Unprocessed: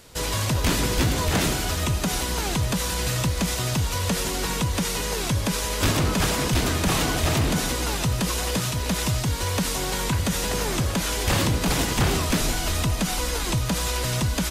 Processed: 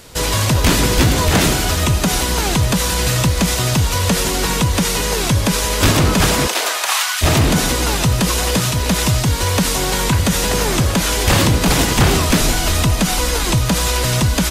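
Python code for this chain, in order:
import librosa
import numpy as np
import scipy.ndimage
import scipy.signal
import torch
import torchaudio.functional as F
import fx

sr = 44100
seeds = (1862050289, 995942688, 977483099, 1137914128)

y = fx.highpass(x, sr, hz=fx.line((6.46, 380.0), (7.21, 1300.0)), slope=24, at=(6.46, 7.21), fade=0.02)
y = y * 10.0 ** (8.5 / 20.0)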